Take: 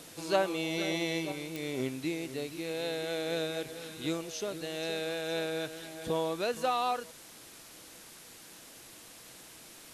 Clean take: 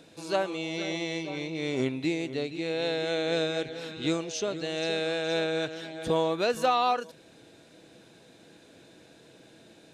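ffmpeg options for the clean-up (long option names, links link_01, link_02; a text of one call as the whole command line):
ffmpeg -i in.wav -af "adeclick=threshold=4,afwtdn=0.0032,asetnsamples=nb_out_samples=441:pad=0,asendcmd='1.32 volume volume 5.5dB',volume=0dB" out.wav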